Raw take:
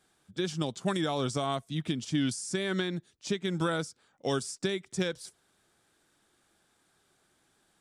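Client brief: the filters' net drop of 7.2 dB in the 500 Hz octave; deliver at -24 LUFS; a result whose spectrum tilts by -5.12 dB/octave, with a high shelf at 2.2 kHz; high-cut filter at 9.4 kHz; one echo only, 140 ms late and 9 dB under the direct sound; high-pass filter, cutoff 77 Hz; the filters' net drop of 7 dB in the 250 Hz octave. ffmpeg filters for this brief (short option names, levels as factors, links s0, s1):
-af "highpass=77,lowpass=9400,equalizer=f=250:t=o:g=-8.5,equalizer=f=500:t=o:g=-6,highshelf=f=2200:g=-8.5,aecho=1:1:140:0.355,volume=5.01"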